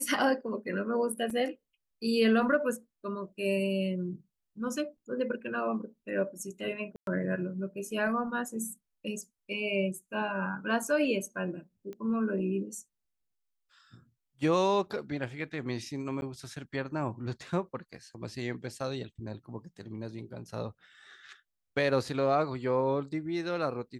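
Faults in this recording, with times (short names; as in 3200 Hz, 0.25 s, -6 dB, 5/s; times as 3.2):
1.3 gap 3.9 ms
6.96–7.07 gap 0.112 s
11.93 pop -31 dBFS
16.21–16.22 gap 11 ms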